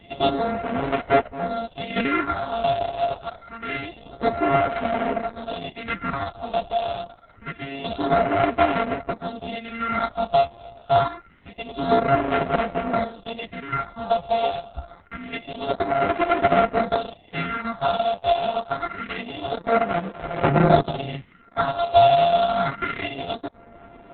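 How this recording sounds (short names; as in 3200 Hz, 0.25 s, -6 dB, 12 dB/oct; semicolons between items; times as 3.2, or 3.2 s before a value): a buzz of ramps at a fixed pitch in blocks of 64 samples; phasing stages 4, 0.26 Hz, lowest notch 280–4500 Hz; chopped level 0.51 Hz, depth 60%, duty 65%; Opus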